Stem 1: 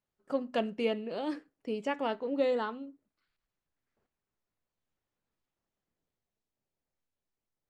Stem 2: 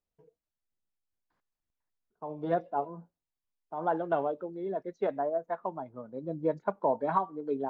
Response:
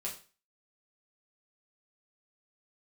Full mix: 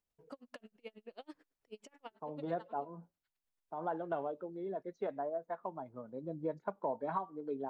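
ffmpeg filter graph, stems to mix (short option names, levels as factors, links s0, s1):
-filter_complex "[0:a]lowshelf=f=380:g=-9,acompressor=threshold=0.0112:ratio=5,aeval=exprs='val(0)*pow(10,-40*(0.5-0.5*cos(2*PI*9.2*n/s))/20)':c=same,volume=0.841[s0];[1:a]volume=0.708[s1];[s0][s1]amix=inputs=2:normalize=0,acompressor=threshold=0.00794:ratio=1.5"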